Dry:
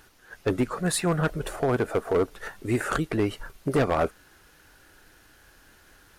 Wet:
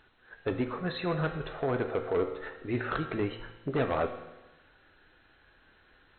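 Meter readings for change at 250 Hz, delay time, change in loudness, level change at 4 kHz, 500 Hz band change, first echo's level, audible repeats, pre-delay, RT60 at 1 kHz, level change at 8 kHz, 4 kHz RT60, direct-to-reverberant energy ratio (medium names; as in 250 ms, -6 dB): -6.0 dB, no echo, -5.5 dB, -6.0 dB, -5.0 dB, no echo, no echo, 4 ms, 1.1 s, under -40 dB, 1.1 s, 5.0 dB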